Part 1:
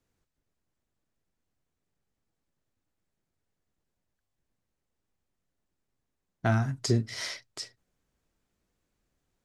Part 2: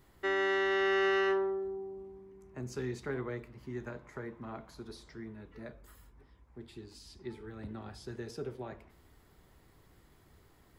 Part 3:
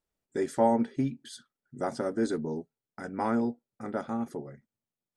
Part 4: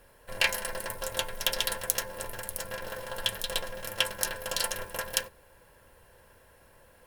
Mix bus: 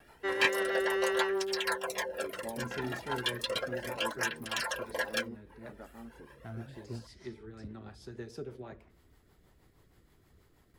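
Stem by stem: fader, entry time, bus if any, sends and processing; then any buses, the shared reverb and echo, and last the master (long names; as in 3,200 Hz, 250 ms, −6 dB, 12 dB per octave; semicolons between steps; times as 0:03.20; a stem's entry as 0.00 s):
−16.0 dB, 0.00 s, no send, high-shelf EQ 2,200 Hz −10.5 dB
−0.5 dB, 0.00 s, no send, no processing
−15.5 dB, 1.85 s, no send, no processing
−7.5 dB, 0.00 s, no send, mid-hump overdrive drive 27 dB, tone 2,000 Hz, clips at −1.5 dBFS; reverb reduction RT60 0.78 s; through-zero flanger with one copy inverted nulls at 0.34 Hz, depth 2 ms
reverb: not used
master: noise gate with hold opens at −54 dBFS; rotating-speaker cabinet horn 6.3 Hz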